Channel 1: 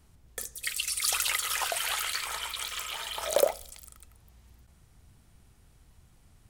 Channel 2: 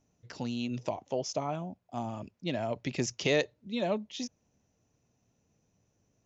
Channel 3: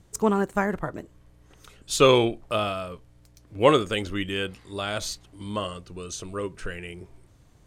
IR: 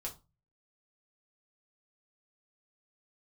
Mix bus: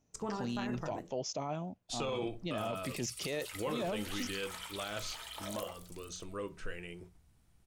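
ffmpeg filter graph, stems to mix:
-filter_complex "[0:a]adelay=2200,volume=-11dB,asplit=2[a][b];[b]volume=-10.5dB[c];[1:a]volume=-2dB,asplit=2[d][e];[2:a]agate=range=-28dB:threshold=-44dB:ratio=16:detection=peak,bandreject=f=60:t=h:w=6,bandreject=f=120:t=h:w=6,bandreject=f=180:t=h:w=6,acrossover=split=7600[f][g];[g]acompressor=threshold=-58dB:ratio=4:attack=1:release=60[h];[f][h]amix=inputs=2:normalize=0,volume=-10.5dB,asplit=2[i][j];[j]volume=-5.5dB[k];[e]apad=whole_len=383589[l];[a][l]sidechaincompress=threshold=-36dB:ratio=8:attack=16:release=604[m];[m][i]amix=inputs=2:normalize=0,acompressor=threshold=-37dB:ratio=6,volume=0dB[n];[3:a]atrim=start_sample=2205[o];[c][k]amix=inputs=2:normalize=0[p];[p][o]afir=irnorm=-1:irlink=0[q];[d][n][q]amix=inputs=3:normalize=0,alimiter=level_in=3.5dB:limit=-24dB:level=0:latency=1:release=20,volume=-3.5dB"

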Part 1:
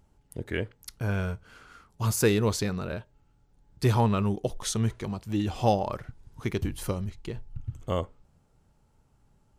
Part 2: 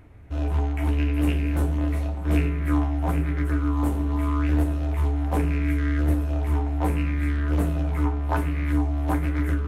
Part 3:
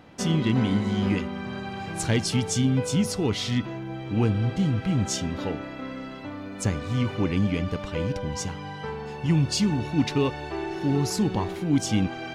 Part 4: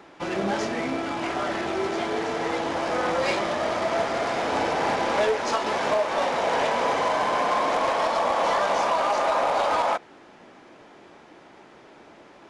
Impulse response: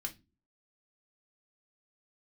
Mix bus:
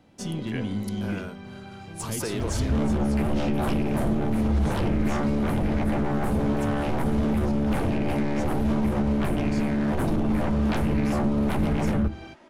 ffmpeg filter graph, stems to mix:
-filter_complex "[0:a]highpass=230,volume=-3.5dB[a];[1:a]lowshelf=f=380:g=6,aeval=exprs='0.501*sin(PI/2*7.08*val(0)/0.501)':c=same,adelay=2400,volume=-7dB,asplit=2[b][c];[c]volume=-11.5dB[d];[2:a]equalizer=f=1.4k:w=0.61:g=-7,volume=-4dB,asplit=2[e][f];[f]volume=-12.5dB[g];[3:a]aecho=1:1:3.2:0.58,asoftclip=type=tanh:threshold=-26dB,adelay=2000,volume=-1.5dB[h];[e][h]amix=inputs=2:normalize=0,aeval=exprs='0.188*(cos(1*acos(clip(val(0)/0.188,-1,1)))-cos(1*PI/2))+0.0211*(cos(3*acos(clip(val(0)/0.188,-1,1)))-cos(3*PI/2))+0.00531*(cos(8*acos(clip(val(0)/0.188,-1,1)))-cos(8*PI/2))':c=same,alimiter=limit=-23dB:level=0:latency=1:release=39,volume=0dB[i];[a][b]amix=inputs=2:normalize=0,alimiter=limit=-18.5dB:level=0:latency=1,volume=0dB[j];[4:a]atrim=start_sample=2205[k];[d][g]amix=inputs=2:normalize=0[l];[l][k]afir=irnorm=-1:irlink=0[m];[i][j][m]amix=inputs=3:normalize=0,equalizer=f=9.9k:w=6.9:g=5,acrossover=split=250[n][o];[o]acompressor=threshold=-28dB:ratio=5[p];[n][p]amix=inputs=2:normalize=0,alimiter=limit=-16dB:level=0:latency=1:release=26"

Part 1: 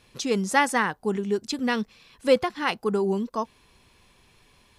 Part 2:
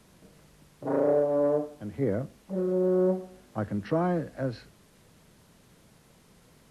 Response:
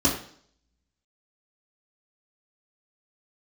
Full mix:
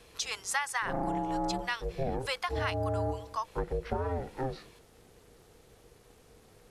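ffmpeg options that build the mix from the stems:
-filter_complex "[0:a]highpass=f=870:w=0.5412,highpass=f=870:w=1.3066,volume=-0.5dB[a];[1:a]equalizer=f=220:t=o:w=0.26:g=8.5,aeval=exprs='val(0)*sin(2*PI*260*n/s)':c=same,volume=1.5dB[b];[a][b]amix=inputs=2:normalize=0,acompressor=threshold=-28dB:ratio=6"

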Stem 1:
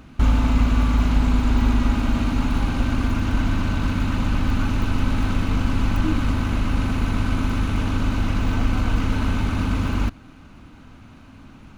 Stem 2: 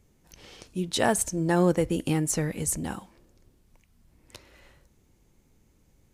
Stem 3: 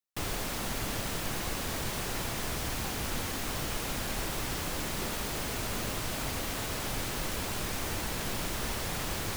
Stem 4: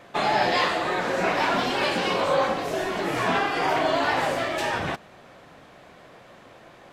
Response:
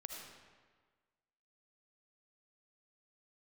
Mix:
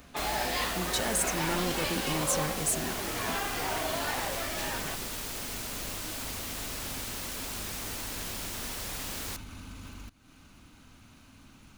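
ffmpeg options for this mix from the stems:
-filter_complex "[0:a]highshelf=f=4.9k:g=11.5,acompressor=threshold=-33dB:ratio=2,alimiter=limit=-24dB:level=0:latency=1:release=301,volume=-11dB[a];[1:a]asoftclip=type=hard:threshold=-24dB,volume=-6dB[b];[2:a]highpass=160,volume=-6.5dB[c];[3:a]volume=-11.5dB[d];[a][b][c][d]amix=inputs=4:normalize=0,highshelf=f=2.7k:g=7.5"

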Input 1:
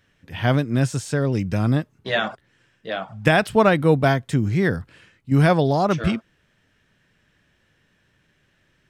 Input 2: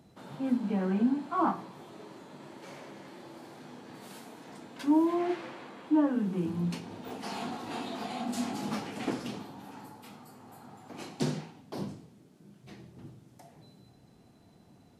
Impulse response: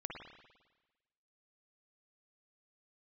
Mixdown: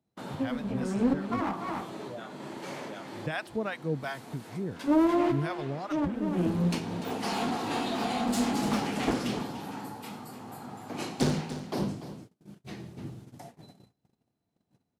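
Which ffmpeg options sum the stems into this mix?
-filter_complex "[0:a]acrossover=split=650[a][b];[a]aeval=exprs='val(0)*(1-1/2+1/2*cos(2*PI*2.8*n/s))':c=same[c];[b]aeval=exprs='val(0)*(1-1/2-1/2*cos(2*PI*2.8*n/s))':c=same[d];[c][d]amix=inputs=2:normalize=0,volume=-12.5dB,asplit=3[e][f][g];[e]atrim=end=1.41,asetpts=PTS-STARTPTS,afade=t=out:st=1.406:d=0.004:c=hsin[h];[f]atrim=start=1.41:end=1.93,asetpts=PTS-STARTPTS,volume=0[i];[g]atrim=start=1.93,asetpts=PTS-STARTPTS,afade=t=in:d=0.004:c=hsin[j];[h][i][j]concat=n=3:v=0:a=1,asplit=2[k][l];[1:a]aeval=exprs='clip(val(0),-1,0.0178)':c=same,acontrast=38,volume=1.5dB,asplit=3[m][n][o];[n]volume=-20.5dB[p];[o]volume=-12dB[q];[l]apad=whole_len=661426[r];[m][r]sidechaincompress=threshold=-43dB:ratio=8:attack=5.7:release=336[s];[2:a]atrim=start_sample=2205[t];[p][t]afir=irnorm=-1:irlink=0[u];[q]aecho=0:1:293:1[v];[k][s][u][v]amix=inputs=4:normalize=0,acrossover=split=480[w][x];[x]acompressor=threshold=-27dB:ratio=6[y];[w][y]amix=inputs=2:normalize=0,highpass=40,agate=range=-30dB:threshold=-46dB:ratio=16:detection=peak"

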